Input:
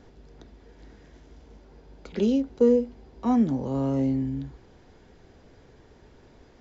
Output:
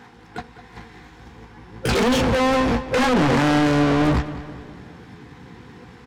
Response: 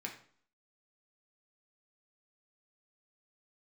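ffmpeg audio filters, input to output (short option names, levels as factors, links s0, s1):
-filter_complex "[0:a]agate=range=0.0316:threshold=0.00708:ratio=16:detection=peak,afftfilt=real='re*(1-between(b*sr/4096,240,630))':imag='im*(1-between(b*sr/4096,240,630))':win_size=4096:overlap=0.75,highpass=69,asubboost=boost=4.5:cutoff=210,asplit=2[s0][s1];[s1]acompressor=threshold=0.0112:ratio=5,volume=0.841[s2];[s0][s2]amix=inputs=2:normalize=0,asplit=2[s3][s4];[s4]asetrate=88200,aresample=44100,atempo=0.5,volume=0.562[s5];[s3][s5]amix=inputs=2:normalize=0,asplit=2[s6][s7];[s7]highpass=f=720:p=1,volume=158,asoftclip=type=tanh:threshold=0.501[s8];[s6][s8]amix=inputs=2:normalize=0,lowpass=f=1300:p=1,volume=0.501,asoftclip=type=tanh:threshold=0.0794,asplit=2[s9][s10];[s10]adelay=18,volume=0.266[s11];[s9][s11]amix=inputs=2:normalize=0,asplit=2[s12][s13];[s13]adelay=223,lowpass=f=4700:p=1,volume=0.2,asplit=2[s14][s15];[s15]adelay=223,lowpass=f=4700:p=1,volume=0.51,asplit=2[s16][s17];[s17]adelay=223,lowpass=f=4700:p=1,volume=0.51,asplit=2[s18][s19];[s19]adelay=223,lowpass=f=4700:p=1,volume=0.51,asplit=2[s20][s21];[s21]adelay=223,lowpass=f=4700:p=1,volume=0.51[s22];[s12][s14][s16][s18][s20][s22]amix=inputs=6:normalize=0,asetrate=48000,aresample=44100,volume=1.78"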